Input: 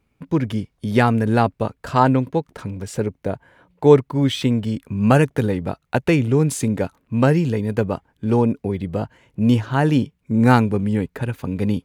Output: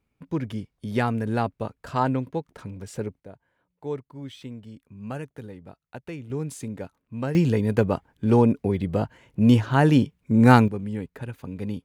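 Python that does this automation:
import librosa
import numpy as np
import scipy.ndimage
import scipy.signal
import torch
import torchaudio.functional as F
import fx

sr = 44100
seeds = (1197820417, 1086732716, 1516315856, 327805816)

y = fx.gain(x, sr, db=fx.steps((0.0, -8.0), (3.2, -19.5), (6.3, -13.0), (7.35, -0.5), (10.68, -10.0)))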